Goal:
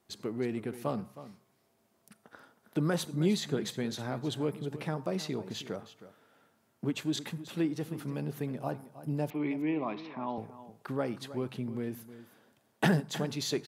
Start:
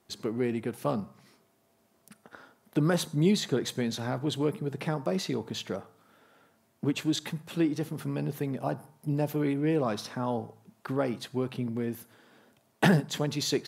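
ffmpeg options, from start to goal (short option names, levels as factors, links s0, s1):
-filter_complex "[0:a]asettb=1/sr,asplit=3[s0][s1][s2];[s0]atrim=end=9.304[s3];[s1]atrim=start=9.3:end=10.38,asetpts=PTS-STARTPTS,afade=t=in:d=0.004:c=qsin,afade=t=out:st=1.076:d=0.004:c=qsin,highpass=230,equalizer=f=310:t=q:w=4:g=4,equalizer=f=490:t=q:w=4:g=-9,equalizer=f=1000:t=q:w=4:g=4,equalizer=f=1500:t=q:w=4:g=-10,equalizer=f=2300:t=q:w=4:g=7,lowpass=f=3300:w=0.5412,lowpass=f=3300:w=1.3066[s4];[s2]atrim=start=10.376[s5];[s3][s4]acrossfade=d=0.004:c1=hsin:c2=qsin[s6];[s6][s5]acrossfade=d=0.004:c1=qsin:c2=hsin,asplit=2[s7][s8];[s8]aecho=0:1:316:0.188[s9];[s7][s9]amix=inputs=2:normalize=0,volume=0.631"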